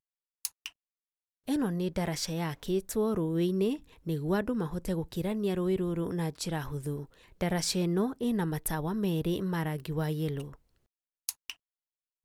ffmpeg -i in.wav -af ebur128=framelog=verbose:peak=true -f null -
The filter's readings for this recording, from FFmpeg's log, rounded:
Integrated loudness:
  I:         -32.0 LUFS
  Threshold: -42.3 LUFS
Loudness range:
  LRA:         2.7 LU
  Threshold: -52.0 LUFS
  LRA low:   -33.8 LUFS
  LRA high:  -31.1 LUFS
True peak:
  Peak:      -11.1 dBFS